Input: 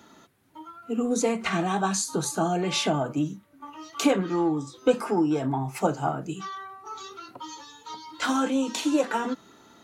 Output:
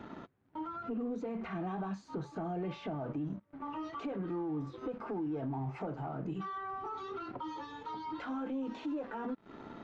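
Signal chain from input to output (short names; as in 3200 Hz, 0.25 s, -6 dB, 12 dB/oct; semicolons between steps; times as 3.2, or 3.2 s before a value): compressor 8:1, threshold -38 dBFS, peak gain reduction 22.5 dB; sample leveller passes 3; limiter -29.5 dBFS, peak gain reduction 10 dB; tape spacing loss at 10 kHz 44 dB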